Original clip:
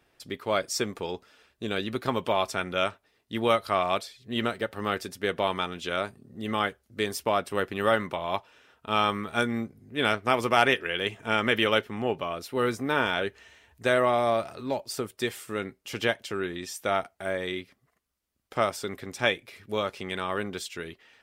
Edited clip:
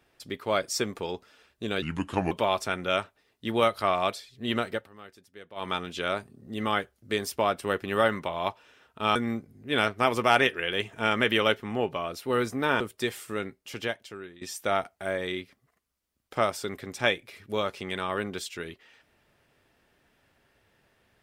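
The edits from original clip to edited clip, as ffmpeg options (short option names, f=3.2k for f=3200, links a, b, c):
-filter_complex "[0:a]asplit=8[a][b][c][d][e][f][g][h];[a]atrim=end=1.824[i];[b]atrim=start=1.82:end=2.19,asetpts=PTS-STARTPTS,asetrate=33075,aresample=44100[j];[c]atrim=start=2.186:end=4.77,asetpts=PTS-STARTPTS,afade=t=out:st=2.364:d=0.22:c=qsin:silence=0.112202[k];[d]atrim=start=4.77:end=5.43,asetpts=PTS-STARTPTS,volume=-19dB[l];[e]atrim=start=5.43:end=9.032,asetpts=PTS-STARTPTS,afade=t=in:d=0.22:c=qsin:silence=0.112202[m];[f]atrim=start=9.418:end=13.072[n];[g]atrim=start=14.998:end=16.61,asetpts=PTS-STARTPTS,afade=t=out:st=0.512:d=1.1:silence=0.133352[o];[h]atrim=start=16.61,asetpts=PTS-STARTPTS,afade=t=in:d=0.004:c=hsin:silence=0.133352[p];[i][j]acrossfade=d=0.004:c1=hsin:c2=hsin[q];[k][l][m]concat=n=3:v=0:a=1[r];[q][r]acrossfade=d=0.004:c1=hsin:c2=hsin[s];[s][n]acrossfade=d=0.004:c1=hsin:c2=hsin[t];[o][p]concat=n=2:v=0:a=1[u];[t][u]acrossfade=d=0.004:c1=hsin:c2=hsin"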